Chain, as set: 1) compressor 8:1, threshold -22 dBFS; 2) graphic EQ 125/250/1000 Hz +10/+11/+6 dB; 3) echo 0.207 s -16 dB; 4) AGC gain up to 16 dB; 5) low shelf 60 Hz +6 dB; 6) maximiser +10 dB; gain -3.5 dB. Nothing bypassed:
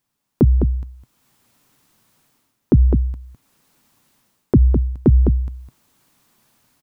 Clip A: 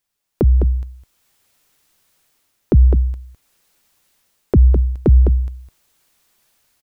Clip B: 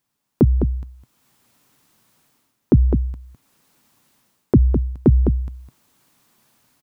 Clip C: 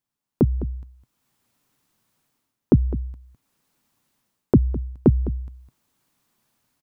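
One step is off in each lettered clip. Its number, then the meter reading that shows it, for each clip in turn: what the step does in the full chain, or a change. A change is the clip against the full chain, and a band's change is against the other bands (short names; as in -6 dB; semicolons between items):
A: 2, 250 Hz band -4.5 dB; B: 5, 125 Hz band -2.0 dB; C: 6, crest factor change +7.0 dB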